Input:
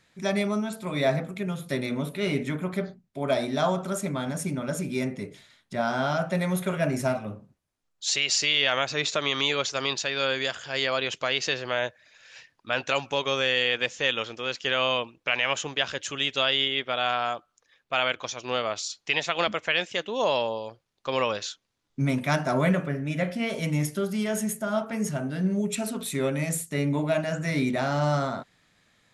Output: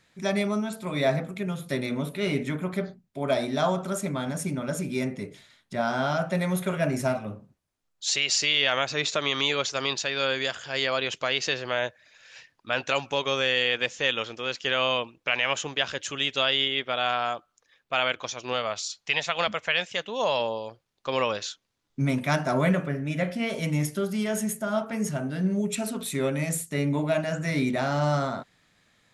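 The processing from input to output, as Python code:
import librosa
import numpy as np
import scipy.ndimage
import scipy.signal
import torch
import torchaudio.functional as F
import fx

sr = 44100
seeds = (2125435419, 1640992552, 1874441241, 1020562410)

y = fx.peak_eq(x, sr, hz=330.0, db=-9.0, octaves=0.59, at=(18.53, 20.4))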